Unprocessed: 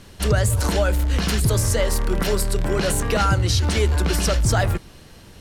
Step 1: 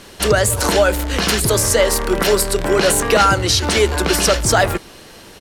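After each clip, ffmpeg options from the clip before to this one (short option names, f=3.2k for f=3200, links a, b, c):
-af "firequalizer=gain_entry='entry(100,0);entry(230,7);entry(370,12)':delay=0.05:min_phase=1,volume=-3.5dB"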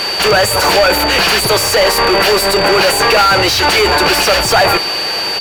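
-filter_complex "[0:a]asplit=2[a][b];[b]highpass=f=720:p=1,volume=33dB,asoftclip=type=tanh:threshold=-1dB[c];[a][c]amix=inputs=2:normalize=0,lowpass=f=2.5k:p=1,volume=-6dB,aeval=exprs='val(0)+0.2*sin(2*PI*4600*n/s)':c=same,equalizer=f=250:t=o:w=0.33:g=-9,equalizer=f=800:t=o:w=0.33:g=4,equalizer=f=2.5k:t=o:w=0.33:g=5,equalizer=f=12.5k:t=o:w=0.33:g=7,volume=-3dB"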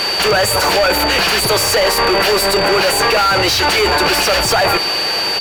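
-af "alimiter=limit=-7dB:level=0:latency=1"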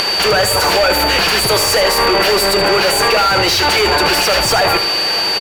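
-af "acompressor=mode=upward:threshold=-16dB:ratio=2.5,aecho=1:1:77:0.299"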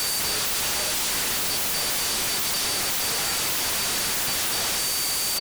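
-af "aeval=exprs='0.112*(abs(mod(val(0)/0.112+3,4)-2)-1)':c=same,volume=-1.5dB"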